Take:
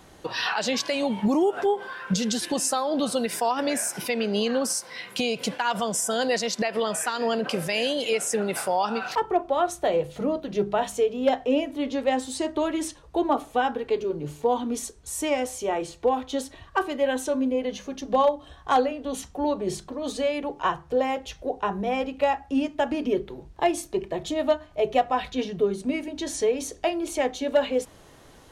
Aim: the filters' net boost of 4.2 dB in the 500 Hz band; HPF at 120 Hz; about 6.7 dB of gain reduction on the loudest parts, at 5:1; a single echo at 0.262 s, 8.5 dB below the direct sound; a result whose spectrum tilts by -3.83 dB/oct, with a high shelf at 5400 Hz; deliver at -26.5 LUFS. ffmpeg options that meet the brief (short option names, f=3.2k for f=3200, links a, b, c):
-af "highpass=120,equalizer=f=500:t=o:g=5,highshelf=f=5.4k:g=-4.5,acompressor=threshold=-20dB:ratio=5,aecho=1:1:262:0.376,volume=-0.5dB"